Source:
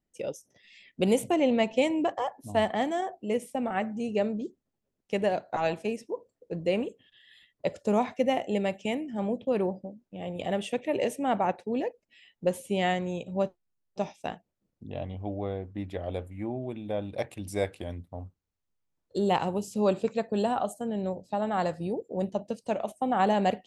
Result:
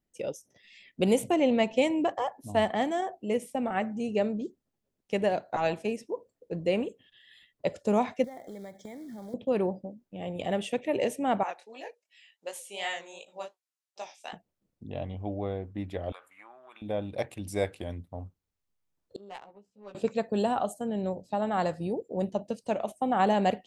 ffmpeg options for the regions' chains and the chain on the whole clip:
-filter_complex "[0:a]asettb=1/sr,asplit=3[s0][s1][s2];[s0]atrim=end=8.244[s3];[s1]atrim=start=8.24:end=9.34,asetpts=PTS-STARTPTS,afade=t=in:d=0.004:c=qsin,afade=t=out:st=1.096:d=0.004:c=qsin,acrusher=bits=5:mode=log:mix=0:aa=0.000001,acompressor=threshold=0.0112:ratio=10:attack=3.2:release=140:knee=1:detection=peak,asuperstop=centerf=2700:order=12:qfactor=3[s4];[s2]atrim=start=9.336[s5];[s3][s4]acrossfade=d=0.004:c1=hsin:c2=qsin[s6];[s6][s5]acrossfade=d=0.004:c1=qsin:c2=hsin,asettb=1/sr,asplit=3[s7][s8][s9];[s7]atrim=end=11.434[s10];[s8]atrim=start=11.43:end=14.33,asetpts=PTS-STARTPTS,afade=t=in:d=0.004:c=qsin,afade=t=out:st=2.896:d=0.004:c=qsin,highpass=790,lowpass=7700,aemphasis=mode=production:type=50fm,flanger=delay=18.5:depth=7:speed=2.7[s11];[s9]atrim=start=14.326[s12];[s10][s11]acrossfade=d=0.004:c1=hsin:c2=qsin[s13];[s13][s12]acrossfade=d=0.004:c1=qsin:c2=hsin,asettb=1/sr,asplit=3[s14][s15][s16];[s14]atrim=end=16.124[s17];[s15]atrim=start=16.12:end=16.82,asetpts=PTS-STARTPTS,afade=t=in:d=0.004:c=qsin,afade=t=out:st=0.696:d=0.004:c=qsin,acompressor=threshold=0.02:ratio=10:attack=3.2:release=140:knee=1:detection=peak,highpass=f=1200:t=q:w=4[s18];[s16]atrim=start=16.816[s19];[s17][s18]acrossfade=d=0.004:c1=hsin:c2=qsin[s20];[s20][s19]acrossfade=d=0.004:c1=qsin:c2=hsin,asettb=1/sr,asplit=3[s21][s22][s23];[s21]atrim=end=19.164[s24];[s22]atrim=start=19.16:end=19.95,asetpts=PTS-STARTPTS,afade=t=in:d=0.004:c=qsin,afade=t=out:st=0.786:d=0.004:c=qsin,aderivative,adynamicsmooth=sensitivity=4:basefreq=620,asplit=2[s25][s26];[s26]adelay=15,volume=0.794[s27];[s25][s27]amix=inputs=2:normalize=0,atrim=end_sample=34839[s28];[s23]atrim=start=19.946[s29];[s24][s28]acrossfade=d=0.004:c1=hsin:c2=qsin[s30];[s30][s29]acrossfade=d=0.004:c1=qsin:c2=hsin"

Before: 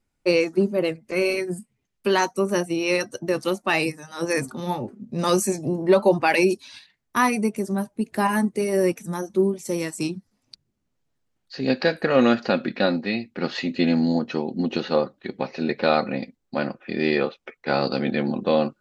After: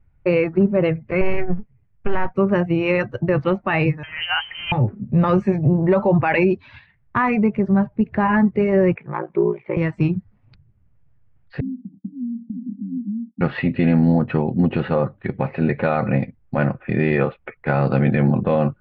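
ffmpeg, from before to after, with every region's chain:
-filter_complex "[0:a]asettb=1/sr,asplit=3[s0][s1][s2];[s0]atrim=end=1.214[s3];[s1]atrim=start=1.21:end=2.34,asetpts=PTS-STARTPTS,afade=t=in:d=0.004:c=qsin,afade=t=out:st=1.126:d=0.004:c=qsin,aeval=exprs='if(lt(val(0),0),0.251*val(0),val(0))':c=same,highshelf=f=3200:g=-9.5[s4];[s2]atrim=start=2.336[s5];[s3][s4]acrossfade=d=0.004:c1=hsin:c2=qsin[s6];[s6][s5]acrossfade=d=0.004:c1=qsin:c2=hsin,asettb=1/sr,asplit=3[s7][s8][s9];[s7]atrim=end=4.034[s10];[s8]atrim=start=4.03:end=4.72,asetpts=PTS-STARTPTS,afade=t=in:d=0.004:c=qsin,afade=t=out:st=0.686:d=0.004:c=qsin,aeval=exprs='val(0)+0.5*0.0112*sgn(val(0))':c=same,lowpass=f=2800:t=q:w=0.5098,lowpass=f=2800:t=q:w=0.6013,lowpass=f=2800:t=q:w=0.9,lowpass=f=2800:t=q:w=2.563,afreqshift=-3300[s11];[s9]atrim=start=4.716[s12];[s10][s11]acrossfade=d=0.004:c1=hsin:c2=qsin[s13];[s13][s12]acrossfade=d=0.004:c1=qsin:c2=hsin,asettb=1/sr,asplit=3[s14][s15][s16];[s14]atrim=end=8.954[s17];[s15]atrim=start=8.95:end=9.77,asetpts=PTS-STARTPTS,afade=t=in:d=0.004:c=qsin,afade=t=out:st=0.816:d=0.004:c=qsin,highpass=390,equalizer=f=410:t=q:w=4:g=7,equalizer=f=1000:t=q:w=4:g=6,equalizer=f=2300:t=q:w=4:g=10,lowpass=f=3100:w=0.5412,lowpass=f=3100:w=1.3066,aeval=exprs='val(0)*sin(2*PI*29*n/s)':c=same[s18];[s16]atrim=start=9.766[s19];[s17][s18]acrossfade=d=0.004:c1=hsin:c2=qsin[s20];[s20][s19]acrossfade=d=0.004:c1=qsin:c2=hsin,asettb=1/sr,asplit=3[s21][s22][s23];[s21]atrim=end=11.604[s24];[s22]atrim=start=11.6:end=13.41,asetpts=PTS-STARTPTS,afade=t=in:d=0.004:c=qsin,afade=t=out:st=1.806:d=0.004:c=qsin,acompressor=threshold=0.0631:ratio=10:attack=3.2:release=140:knee=1:detection=peak,asuperpass=centerf=230:order=12:qfactor=2.3,agate=range=0.0224:threshold=0.00398:ratio=3:release=100:detection=peak[s25];[s23]atrim=start=13.406[s26];[s24][s25]acrossfade=d=0.004:c1=hsin:c2=qsin[s27];[s27][s26]acrossfade=d=0.004:c1=qsin:c2=hsin,lowpass=f=2300:w=0.5412,lowpass=f=2300:w=1.3066,lowshelf=f=170:t=q:w=1.5:g=13.5,alimiter=level_in=4.73:limit=0.891:release=50:level=0:latency=1,volume=0.447"

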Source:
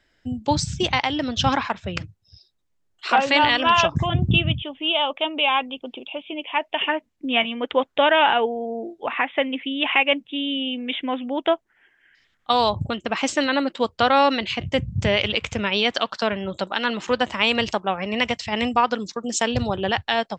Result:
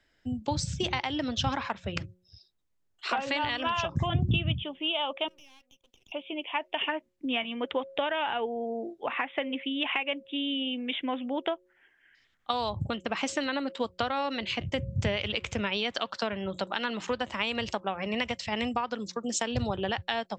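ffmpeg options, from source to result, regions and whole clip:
-filter_complex "[0:a]asettb=1/sr,asplit=3[s0][s1][s2];[s0]atrim=end=5.284[s3];[s1]atrim=start=5.28:end=6.12,asetpts=PTS-STARTPTS,afade=t=in:d=0.004:c=qsin,afade=t=out:st=0.836:d=0.004:c=qsin,aderivative,acompressor=threshold=0.00355:ratio=3:attack=3.2:release=140:knee=1:detection=peak,aeval=exprs='max(val(0),0)':c=same[s4];[s2]atrim=start=6.116[s5];[s3][s4]acrossfade=d=0.004:c1=hsin:c2=qsin[s6];[s6][s5]acrossfade=d=0.004:c1=qsin:c2=hsin,bandreject=f=181.1:t=h:w=4,bandreject=f=362.2:t=h:w=4,bandreject=f=543.3:t=h:w=4,acrossover=split=120[s7][s8];[s8]acompressor=threshold=0.0891:ratio=10[s9];[s7][s9]amix=inputs=2:normalize=0,volume=0.596"

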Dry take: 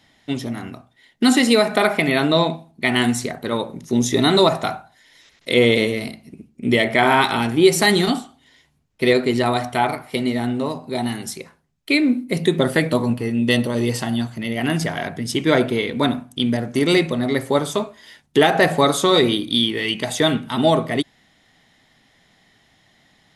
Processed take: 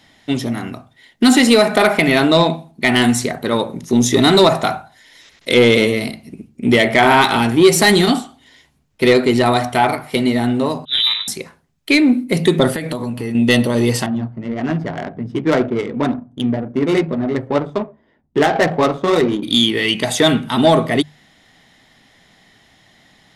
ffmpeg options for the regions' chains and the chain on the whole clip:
-filter_complex "[0:a]asettb=1/sr,asplit=3[s0][s1][s2];[s0]atrim=end=10.854[s3];[s1]atrim=start=10.85:end=11.28,asetpts=PTS-STARTPTS,afade=t=in:d=0.004:c=qsin,afade=t=out:st=0.426:d=0.004:c=qsin,aeval=exprs='val(0)*sin(2*PI*140*n/s)':c=same,lowpass=f=3400:t=q:w=0.5098,lowpass=f=3400:t=q:w=0.6013,lowpass=f=3400:t=q:w=0.9,lowpass=f=3400:t=q:w=2.563,afreqshift=-4000,adynamicequalizer=threshold=0.01:dfrequency=1800:dqfactor=0.7:tfrequency=1800:tqfactor=0.7:attack=5:release=100:ratio=0.375:range=2.5:mode=boostabove:tftype=highshelf[s4];[s2]atrim=start=11.276[s5];[s3][s4]acrossfade=d=0.004:c1=hsin:c2=qsin[s6];[s6][s5]acrossfade=d=0.004:c1=qsin:c2=hsin,asettb=1/sr,asplit=3[s7][s8][s9];[s7]atrim=end=12.714[s10];[s8]atrim=start=12.71:end=13.35,asetpts=PTS-STARTPTS,afade=t=in:d=0.004:c=qsin,afade=t=out:st=0.636:d=0.004:c=qsin,acompressor=threshold=0.0631:ratio=16:attack=3.2:release=140:knee=1:detection=peak,highshelf=f=10000:g=3.5[s11];[s9]atrim=start=13.346[s12];[s10][s11]acrossfade=d=0.004:c1=hsin:c2=qsin[s13];[s13][s12]acrossfade=d=0.004:c1=qsin:c2=hsin,asettb=1/sr,asplit=3[s14][s15][s16];[s14]atrim=end=14.064[s17];[s15]atrim=start=14.06:end=19.43,asetpts=PTS-STARTPTS,afade=t=in:d=0.004:c=qsin,afade=t=out:st=5.366:d=0.004:c=qsin,flanger=delay=2.4:depth=7.3:regen=-43:speed=1.9:shape=triangular,adynamicsmooth=sensitivity=1:basefreq=620[s18];[s16]atrim=start=19.426[s19];[s17][s18]acrossfade=d=0.004:c1=hsin:c2=qsin[s20];[s20][s19]acrossfade=d=0.004:c1=qsin:c2=hsin,bandreject=f=50:t=h:w=6,bandreject=f=100:t=h:w=6,bandreject=f=150:t=h:w=6,acontrast=76,volume=0.891"

